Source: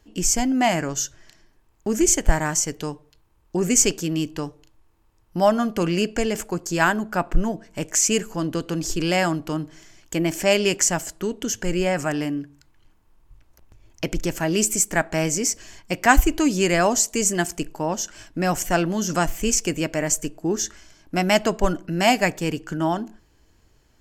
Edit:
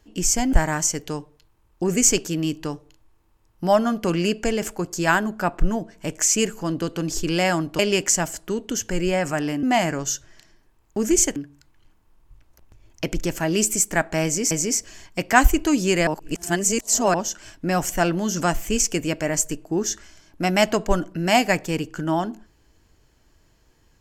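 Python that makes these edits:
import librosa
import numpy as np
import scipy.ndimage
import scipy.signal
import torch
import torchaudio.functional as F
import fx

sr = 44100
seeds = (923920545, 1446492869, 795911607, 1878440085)

y = fx.edit(x, sr, fx.move(start_s=0.53, length_s=1.73, to_s=12.36),
    fx.cut(start_s=9.52, length_s=1.0),
    fx.repeat(start_s=15.24, length_s=0.27, count=2),
    fx.reverse_span(start_s=16.8, length_s=1.07), tone=tone)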